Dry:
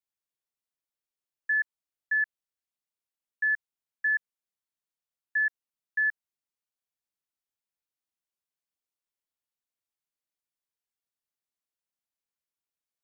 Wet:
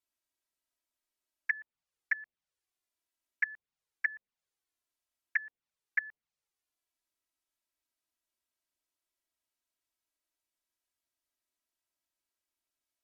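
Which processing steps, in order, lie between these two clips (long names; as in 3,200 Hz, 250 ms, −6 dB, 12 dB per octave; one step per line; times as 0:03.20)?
flanger swept by the level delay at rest 3.1 ms, full sweep at −26 dBFS
treble cut that deepens with the level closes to 1,800 Hz, closed at −39.5 dBFS
level +6 dB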